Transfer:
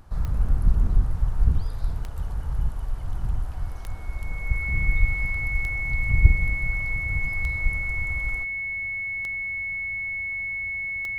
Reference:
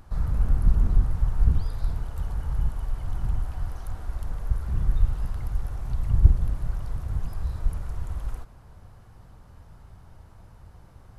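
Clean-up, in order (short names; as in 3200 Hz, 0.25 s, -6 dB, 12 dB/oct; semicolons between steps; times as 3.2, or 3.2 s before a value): de-click; notch 2200 Hz, Q 30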